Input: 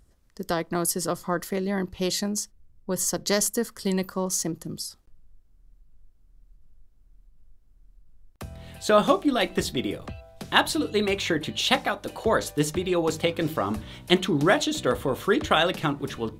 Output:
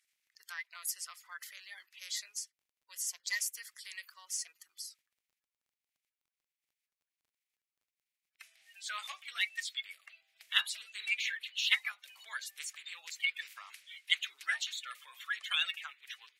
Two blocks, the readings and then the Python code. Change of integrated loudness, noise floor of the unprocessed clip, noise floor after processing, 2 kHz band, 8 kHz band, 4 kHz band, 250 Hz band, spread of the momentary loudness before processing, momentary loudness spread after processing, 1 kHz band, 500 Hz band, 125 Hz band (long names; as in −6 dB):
−11.0 dB, −58 dBFS, below −85 dBFS, −6.0 dB, −10.0 dB, −6.5 dB, below −40 dB, 13 LU, 16 LU, −22.0 dB, below −40 dB, below −40 dB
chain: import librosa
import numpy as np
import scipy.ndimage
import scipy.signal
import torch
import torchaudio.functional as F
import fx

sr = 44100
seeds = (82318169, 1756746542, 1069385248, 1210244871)

y = fx.spec_quant(x, sr, step_db=30)
y = fx.ladder_highpass(y, sr, hz=1900.0, resonance_pct=55)
y = fx.dmg_crackle(y, sr, seeds[0], per_s=19.0, level_db=-63.0)